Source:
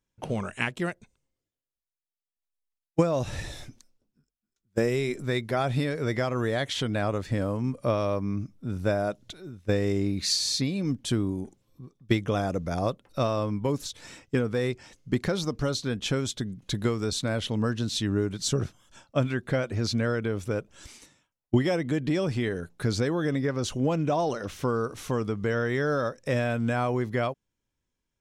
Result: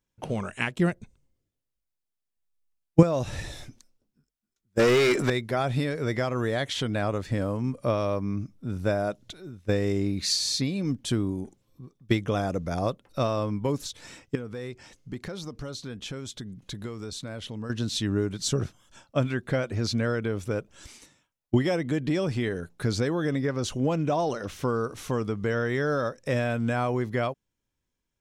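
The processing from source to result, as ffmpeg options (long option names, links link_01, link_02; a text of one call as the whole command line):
ffmpeg -i in.wav -filter_complex "[0:a]asettb=1/sr,asplit=3[link_01][link_02][link_03];[link_01]atrim=end=0.794[link_04];[link_02]atrim=start=0.79:end=3.03,asetpts=PTS-STARTPTS,afade=type=in:duration=0.004:curve=qsin,afade=type=out:start_time=2.236:duration=0.004:curve=qsin,lowshelf=frequency=320:gain=11.5[link_05];[link_03]atrim=start=3.026[link_06];[link_04][link_05]acrossfade=duration=0.004:curve1=hsin:curve2=qsin[link_07];[link_07][link_06]acrossfade=duration=0.004:curve1=qsin:curve2=hsin,asettb=1/sr,asplit=3[link_08][link_09][link_10];[link_08]atrim=end=4.794[link_11];[link_09]atrim=start=4.79:end=5.3,asetpts=PTS-STARTPTS,afade=type=in:duration=0.004:curve=qsin,afade=type=out:start_time=0.506:duration=0.004:curve=qsin,asplit=2[link_12][link_13];[link_13]highpass=frequency=720:poles=1,volume=28dB,asoftclip=type=tanh:threshold=-13dB[link_14];[link_12][link_14]amix=inputs=2:normalize=0,lowpass=frequency=3200:poles=1,volume=-6dB[link_15];[link_10]atrim=start=5.296[link_16];[link_11][link_15]acrossfade=duration=0.004:curve1=hsin:curve2=qsin[link_17];[link_17][link_16]acrossfade=duration=0.004:curve1=qsin:curve2=hsin,asettb=1/sr,asplit=3[link_18][link_19][link_20];[link_18]atrim=end=14.354[link_21];[link_19]atrim=start=14.35:end=17.7,asetpts=PTS-STARTPTS,afade=type=in:duration=0.004:curve=qsin,afade=type=out:start_time=3.346:duration=0.004:curve=qsin,acompressor=threshold=-39dB:ratio=2:attack=3.2:release=140:knee=1:detection=peak[link_22];[link_20]atrim=start=17.696[link_23];[link_21][link_22]acrossfade=duration=0.004:curve1=hsin:curve2=qsin[link_24];[link_24][link_23]acrossfade=duration=0.004:curve1=qsin:curve2=hsin" out.wav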